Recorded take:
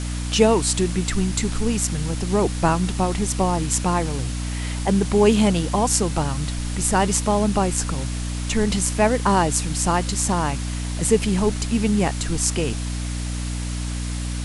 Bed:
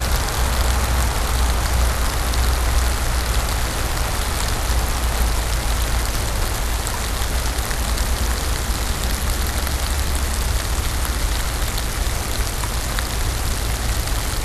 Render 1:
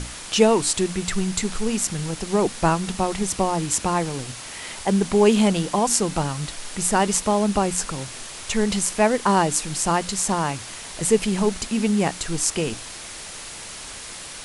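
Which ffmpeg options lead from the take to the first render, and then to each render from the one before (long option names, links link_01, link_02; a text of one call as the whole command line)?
ffmpeg -i in.wav -af "bandreject=frequency=60:width_type=h:width=6,bandreject=frequency=120:width_type=h:width=6,bandreject=frequency=180:width_type=h:width=6,bandreject=frequency=240:width_type=h:width=6,bandreject=frequency=300:width_type=h:width=6" out.wav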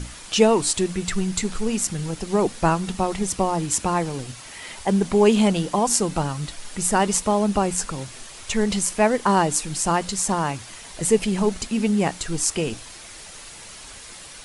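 ffmpeg -i in.wav -af "afftdn=noise_reduction=6:noise_floor=-37" out.wav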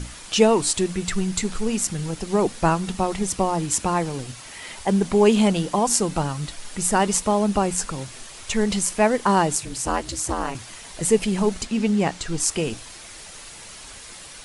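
ffmpeg -i in.wav -filter_complex "[0:a]asettb=1/sr,asplit=3[link_01][link_02][link_03];[link_01]atrim=end=9.554[link_04];[link_02]atrim=start=9.55:end=10.55,asetpts=PTS-STARTPTS,afade=type=in:duration=0.004:curve=qsin,afade=type=out:start_time=0.996:duration=0.004:curve=qsin,aeval=exprs='val(0)*sin(2*PI*130*n/s)':channel_layout=same[link_05];[link_03]atrim=start=10.546[link_06];[link_04][link_05]acrossfade=duration=0.004:curve1=hsin:curve2=qsin[link_07];[link_07][link_06]acrossfade=duration=0.004:curve1=qsin:curve2=hsin,asettb=1/sr,asplit=3[link_08][link_09][link_10];[link_08]atrim=end=11.654[link_11];[link_09]atrim=start=11.65:end=12.4,asetpts=PTS-STARTPTS,afade=type=in:duration=0.004:curve=qsin,afade=type=out:start_time=0.746:duration=0.004:curve=qsin,lowpass=7500[link_12];[link_10]atrim=start=12.396[link_13];[link_11][link_12]acrossfade=duration=0.004:curve1=hsin:curve2=qsin[link_14];[link_14][link_13]acrossfade=duration=0.004:curve1=qsin:curve2=hsin" out.wav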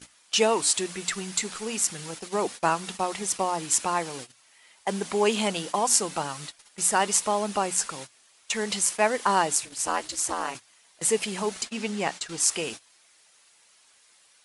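ffmpeg -i in.wav -af "agate=range=-18dB:threshold=-30dB:ratio=16:detection=peak,highpass=frequency=830:poles=1" out.wav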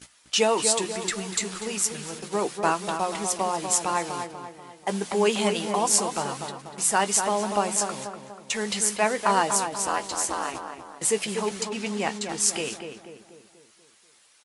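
ffmpeg -i in.wav -filter_complex "[0:a]asplit=2[link_01][link_02];[link_02]adelay=15,volume=-11.5dB[link_03];[link_01][link_03]amix=inputs=2:normalize=0,asplit=2[link_04][link_05];[link_05]adelay=243,lowpass=frequency=1800:poles=1,volume=-6dB,asplit=2[link_06][link_07];[link_07]adelay=243,lowpass=frequency=1800:poles=1,volume=0.51,asplit=2[link_08][link_09];[link_09]adelay=243,lowpass=frequency=1800:poles=1,volume=0.51,asplit=2[link_10][link_11];[link_11]adelay=243,lowpass=frequency=1800:poles=1,volume=0.51,asplit=2[link_12][link_13];[link_13]adelay=243,lowpass=frequency=1800:poles=1,volume=0.51,asplit=2[link_14][link_15];[link_15]adelay=243,lowpass=frequency=1800:poles=1,volume=0.51[link_16];[link_04][link_06][link_08][link_10][link_12][link_14][link_16]amix=inputs=7:normalize=0" out.wav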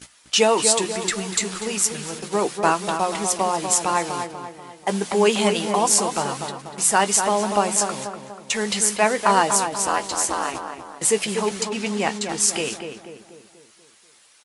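ffmpeg -i in.wav -af "volume=4.5dB,alimiter=limit=-1dB:level=0:latency=1" out.wav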